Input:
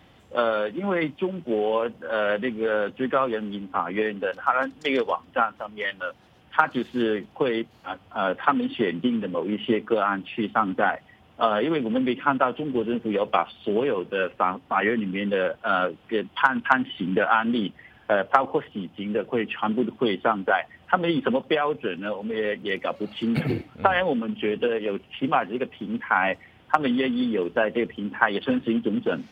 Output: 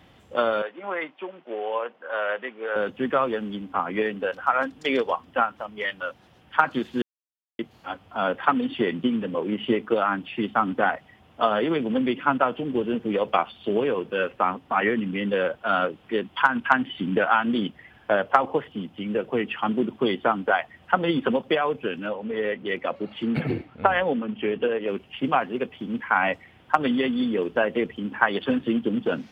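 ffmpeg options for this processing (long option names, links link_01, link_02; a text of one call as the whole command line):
ffmpeg -i in.wav -filter_complex "[0:a]asettb=1/sr,asplit=3[link_01][link_02][link_03];[link_01]atrim=end=0.624[link_04];[link_02]atrim=start=0.62:end=2.76,asetpts=PTS-STARTPTS,afade=type=in:duration=0.004:curve=qsin,afade=type=out:start_time=2.136:duration=0.004:curve=qsin,highpass=620,lowpass=2500[link_05];[link_03]atrim=start=2.756[link_06];[link_04][link_05]acrossfade=duration=0.004:curve1=hsin:curve2=qsin[link_07];[link_07][link_06]acrossfade=duration=0.004:curve1=qsin:curve2=hsin,asettb=1/sr,asplit=3[link_08][link_09][link_10];[link_08]atrim=end=22.064[link_11];[link_09]atrim=start=22.06:end=24.88,asetpts=PTS-STARTPTS,afade=type=in:duration=0.004:curve=qsin,afade=type=out:start_time=2.816:duration=0.004:curve=qsin,bass=frequency=250:gain=-2,treble=frequency=4000:gain=-11[link_12];[link_10]atrim=start=24.876[link_13];[link_11][link_12]acrossfade=duration=0.004:curve1=hsin:curve2=qsin[link_14];[link_14][link_13]acrossfade=duration=0.004:curve1=qsin:curve2=hsin,asplit=3[link_15][link_16][link_17];[link_15]atrim=end=7.02,asetpts=PTS-STARTPTS,afade=type=out:start_time=7.016:duration=0.004:curve=hsin[link_18];[link_16]atrim=start=7.02:end=7.59,asetpts=PTS-STARTPTS,volume=0[link_19];[link_17]atrim=start=7.59,asetpts=PTS-STARTPTS,afade=type=in:duration=0.004:curve=hsin[link_20];[link_18][link_19][link_20]concat=n=3:v=0:a=1" out.wav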